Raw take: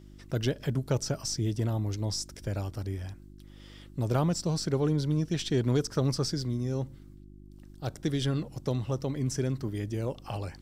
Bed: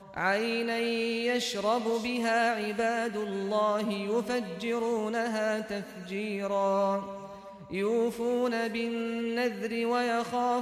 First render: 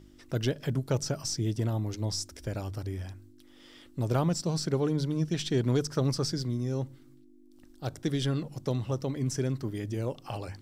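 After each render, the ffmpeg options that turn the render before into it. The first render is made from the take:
-af "bandreject=f=50:t=h:w=4,bandreject=f=100:t=h:w=4,bandreject=f=150:t=h:w=4,bandreject=f=200:t=h:w=4"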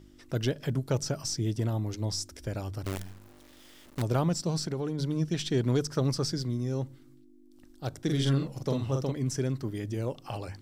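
-filter_complex "[0:a]asettb=1/sr,asplit=3[a][b][c];[a]atrim=end=2.844[d];[b]atrim=start=2.84:end=4.02,asetpts=PTS-STARTPTS,afade=t=in:d=0.004:c=qsin,afade=t=out:st=1.176:d=0.004:c=qsin,acrusher=bits=6:dc=4:mix=0:aa=0.000001[e];[c]atrim=start=4.016[f];[d][e]acrossfade=d=0.004:c1=hsin:c2=qsin[g];[g][f]acrossfade=d=0.004:c1=qsin:c2=hsin,asettb=1/sr,asplit=3[h][i][j];[h]atrim=end=4.594[k];[i]atrim=start=4.59:end=4.99,asetpts=PTS-STARTPTS,afade=t=in:d=0.004:c=qsin,afade=t=out:st=0.396:d=0.004:c=qsin,acompressor=threshold=-28dB:ratio=5:attack=3.2:release=140:knee=1:detection=peak[l];[j]atrim=start=4.986[m];[k][l]acrossfade=d=0.004:c1=hsin:c2=qsin[n];[n][m]acrossfade=d=0.004:c1=qsin:c2=hsin,asettb=1/sr,asplit=3[o][p][q];[o]atrim=end=8.044[r];[p]atrim=start=8.04:end=9.12,asetpts=PTS-STARTPTS,afade=t=in:d=0.004:c=qsin,afade=t=out:st=1.076:d=0.004:c=qsin,asplit=2[s][t];[t]adelay=44,volume=-3dB[u];[s][u]amix=inputs=2:normalize=0,atrim=end_sample=47628[v];[q]atrim=start=9.116[w];[r][v]acrossfade=d=0.004:c1=hsin:c2=qsin[x];[x][w]acrossfade=d=0.004:c1=qsin:c2=hsin"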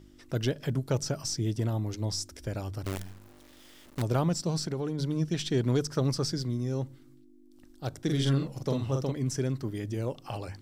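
-af anull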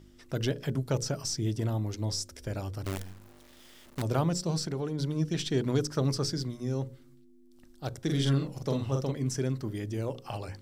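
-af "bandreject=f=60:t=h:w=6,bandreject=f=120:t=h:w=6,bandreject=f=180:t=h:w=6,bandreject=f=240:t=h:w=6,bandreject=f=300:t=h:w=6,bandreject=f=360:t=h:w=6,bandreject=f=420:t=h:w=6,bandreject=f=480:t=h:w=6,bandreject=f=540:t=h:w=6"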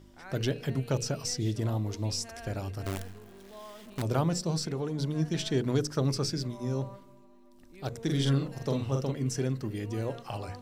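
-filter_complex "[1:a]volume=-20dB[a];[0:a][a]amix=inputs=2:normalize=0"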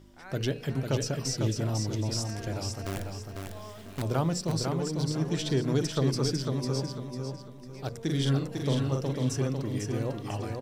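-af "aecho=1:1:499|998|1497|1996:0.596|0.197|0.0649|0.0214"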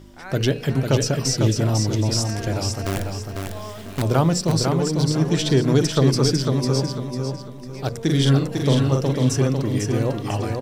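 -af "volume=9.5dB"

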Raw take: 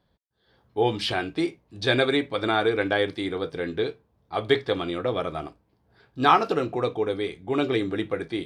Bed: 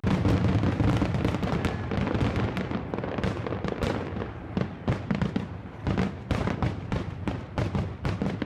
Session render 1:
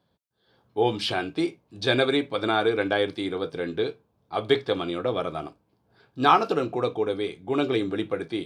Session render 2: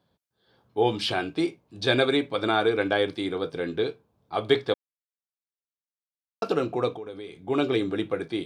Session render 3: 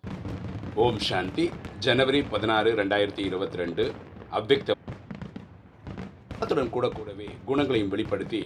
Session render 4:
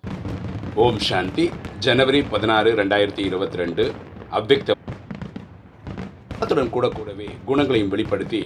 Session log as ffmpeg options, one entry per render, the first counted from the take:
-af "highpass=100,equalizer=f=1.9k:w=6.2:g=-7"
-filter_complex "[0:a]asettb=1/sr,asplit=3[a][b][c];[a]atrim=end=6.964[d];[b]atrim=start=6.96:end=7.48,asetpts=PTS-STARTPTS,afade=t=in:d=0.004:c=qsin,afade=t=out:st=0.516:d=0.004:c=qsin,acompressor=threshold=-38dB:ratio=3:attack=3.2:release=140:knee=1:detection=peak[e];[c]atrim=start=7.476[f];[d][e]acrossfade=d=0.004:c1=hsin:c2=qsin[g];[g][f]acrossfade=d=0.004:c1=qsin:c2=hsin,asplit=3[h][i][j];[h]atrim=end=4.74,asetpts=PTS-STARTPTS,afade=t=out:st=4.736:d=0.004:c=hsin[k];[i]atrim=start=4.74:end=6.42,asetpts=PTS-STARTPTS,volume=0[l];[j]atrim=start=6.42,asetpts=PTS-STARTPTS,afade=t=in:d=0.004:c=hsin[m];[k][l][m]concat=n=3:v=0:a=1"
-filter_complex "[1:a]volume=-11.5dB[a];[0:a][a]amix=inputs=2:normalize=0"
-af "volume=6dB,alimiter=limit=-3dB:level=0:latency=1"

